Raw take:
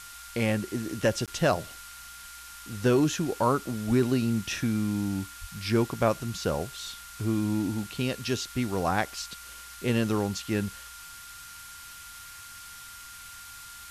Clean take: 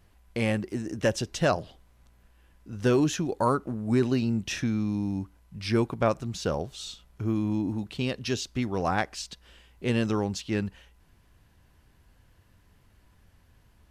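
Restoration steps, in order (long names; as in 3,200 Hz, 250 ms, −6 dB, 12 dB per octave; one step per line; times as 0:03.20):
notch filter 1,400 Hz, Q 30
0:03.87–0:03.99: high-pass filter 140 Hz 24 dB per octave
0:05.40–0:05.52: high-pass filter 140 Hz 24 dB per octave
repair the gap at 0:01.26, 17 ms
noise reduction from a noise print 15 dB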